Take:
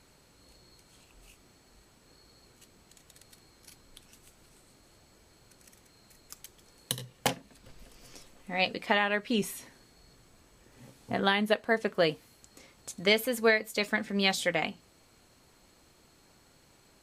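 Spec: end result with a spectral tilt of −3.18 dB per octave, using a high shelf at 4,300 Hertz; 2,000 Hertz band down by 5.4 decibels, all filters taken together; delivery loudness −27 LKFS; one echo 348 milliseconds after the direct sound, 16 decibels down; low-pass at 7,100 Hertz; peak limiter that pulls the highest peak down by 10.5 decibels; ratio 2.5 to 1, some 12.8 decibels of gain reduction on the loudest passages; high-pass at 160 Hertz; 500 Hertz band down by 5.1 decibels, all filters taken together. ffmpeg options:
ffmpeg -i in.wav -af "highpass=160,lowpass=7100,equalizer=frequency=500:width_type=o:gain=-6,equalizer=frequency=2000:width_type=o:gain=-7,highshelf=frequency=4300:gain=4.5,acompressor=threshold=-44dB:ratio=2.5,alimiter=level_in=8dB:limit=-24dB:level=0:latency=1,volume=-8dB,aecho=1:1:348:0.158,volume=21.5dB" out.wav

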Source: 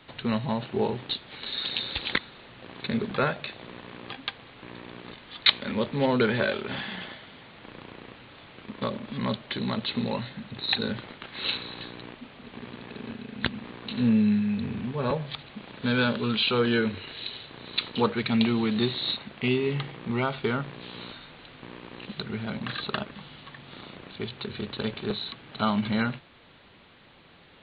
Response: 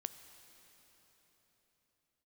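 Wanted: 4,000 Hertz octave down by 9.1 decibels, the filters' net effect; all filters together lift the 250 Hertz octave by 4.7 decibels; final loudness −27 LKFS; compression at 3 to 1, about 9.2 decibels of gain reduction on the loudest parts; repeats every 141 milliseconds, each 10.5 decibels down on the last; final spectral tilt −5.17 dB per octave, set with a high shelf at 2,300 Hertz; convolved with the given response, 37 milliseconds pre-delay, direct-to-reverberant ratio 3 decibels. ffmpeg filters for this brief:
-filter_complex "[0:a]equalizer=frequency=250:width_type=o:gain=5.5,highshelf=frequency=2300:gain=-5,equalizer=frequency=4000:width_type=o:gain=-6.5,acompressor=threshold=-27dB:ratio=3,aecho=1:1:141|282|423:0.299|0.0896|0.0269,asplit=2[link_01][link_02];[1:a]atrim=start_sample=2205,adelay=37[link_03];[link_02][link_03]afir=irnorm=-1:irlink=0,volume=-0.5dB[link_04];[link_01][link_04]amix=inputs=2:normalize=0,volume=3.5dB"

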